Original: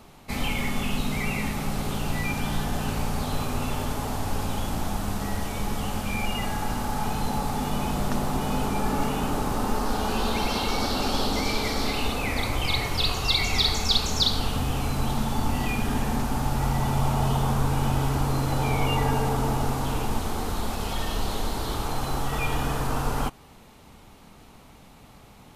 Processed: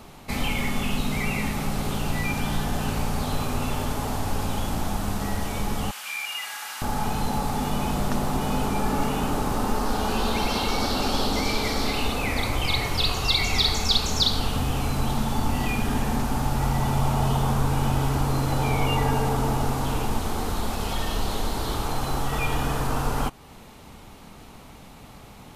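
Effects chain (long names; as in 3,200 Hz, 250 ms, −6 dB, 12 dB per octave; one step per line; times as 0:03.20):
0:05.91–0:06.82: Chebyshev high-pass filter 1,800 Hz, order 2
in parallel at −3 dB: downward compressor, threshold −37 dBFS, peak gain reduction 19.5 dB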